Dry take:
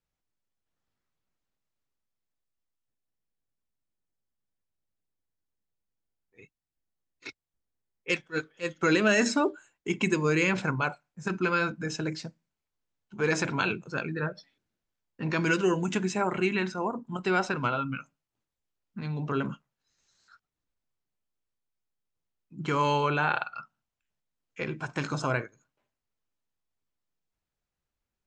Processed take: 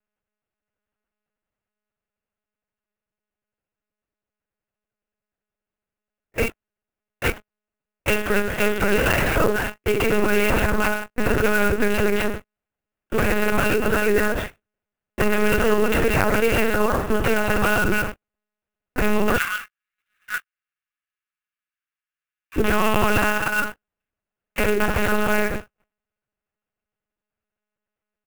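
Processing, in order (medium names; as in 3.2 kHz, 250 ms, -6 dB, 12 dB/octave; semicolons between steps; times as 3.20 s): spectral levelling over time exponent 0.4; frequency shift +76 Hz; comb 4.8 ms, depth 72%; gate -31 dBFS, range -54 dB; compression 6:1, threshold -22 dBFS, peak gain reduction 10 dB; 19.37–22.58 s: inverse Chebyshev high-pass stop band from 390 Hz, stop band 60 dB; peak limiter -18 dBFS, peak gain reduction 7 dB; LPC vocoder at 8 kHz pitch kept; sampling jitter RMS 0.026 ms; trim +9 dB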